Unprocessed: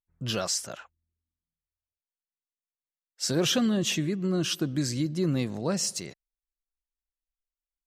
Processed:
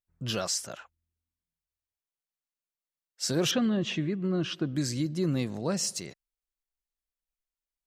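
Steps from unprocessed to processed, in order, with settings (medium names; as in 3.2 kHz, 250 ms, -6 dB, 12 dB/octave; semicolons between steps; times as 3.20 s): 3.51–4.76 s: low-pass 3.1 kHz 12 dB/octave; trim -1.5 dB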